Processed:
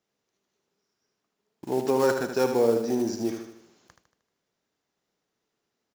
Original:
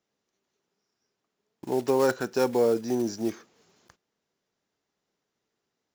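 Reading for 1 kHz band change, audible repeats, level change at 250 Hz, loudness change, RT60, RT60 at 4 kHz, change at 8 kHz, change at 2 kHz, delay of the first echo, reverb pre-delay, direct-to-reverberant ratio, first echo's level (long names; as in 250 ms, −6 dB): +1.0 dB, 5, +1.0 dB, +1.0 dB, no reverb audible, no reverb audible, +1.0 dB, +1.0 dB, 77 ms, no reverb audible, no reverb audible, −7.0 dB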